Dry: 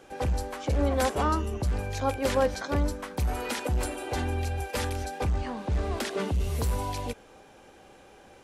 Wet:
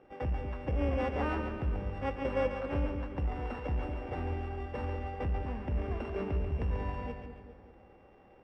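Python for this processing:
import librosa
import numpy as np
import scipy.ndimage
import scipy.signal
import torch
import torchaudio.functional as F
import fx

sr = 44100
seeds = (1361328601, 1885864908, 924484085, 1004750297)

y = np.r_[np.sort(x[:len(x) // 16 * 16].reshape(-1, 16), axis=1).ravel(), x[len(x) // 16 * 16:]]
y = scipy.signal.sosfilt(scipy.signal.butter(2, 1400.0, 'lowpass', fs=sr, output='sos'), y)
y = fx.echo_split(y, sr, split_hz=560.0, low_ms=198, high_ms=139, feedback_pct=52, wet_db=-6.5)
y = y * 10.0 ** (-5.5 / 20.0)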